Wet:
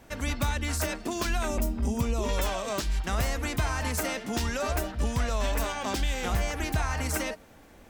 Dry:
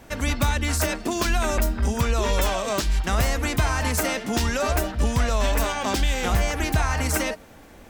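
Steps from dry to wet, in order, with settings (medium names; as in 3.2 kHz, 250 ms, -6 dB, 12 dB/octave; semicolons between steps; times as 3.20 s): 1.48–2.29 s: fifteen-band graphic EQ 250 Hz +6 dB, 1.6 kHz -11 dB, 4 kHz -5 dB; trim -6 dB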